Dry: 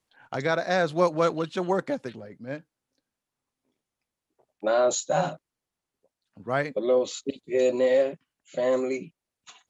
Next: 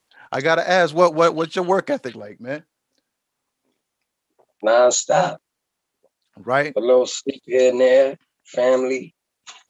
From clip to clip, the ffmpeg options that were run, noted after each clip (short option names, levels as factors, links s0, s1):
-af "lowshelf=f=230:g=-9,volume=2.82"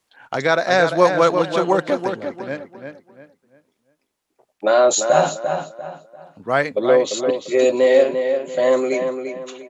-filter_complex "[0:a]asplit=2[s0][s1];[s1]adelay=345,lowpass=f=3400:p=1,volume=0.473,asplit=2[s2][s3];[s3]adelay=345,lowpass=f=3400:p=1,volume=0.33,asplit=2[s4][s5];[s5]adelay=345,lowpass=f=3400:p=1,volume=0.33,asplit=2[s6][s7];[s7]adelay=345,lowpass=f=3400:p=1,volume=0.33[s8];[s0][s2][s4][s6][s8]amix=inputs=5:normalize=0"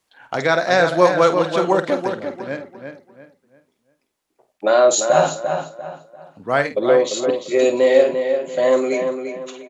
-filter_complex "[0:a]asplit=2[s0][s1];[s1]adelay=50,volume=0.282[s2];[s0][s2]amix=inputs=2:normalize=0"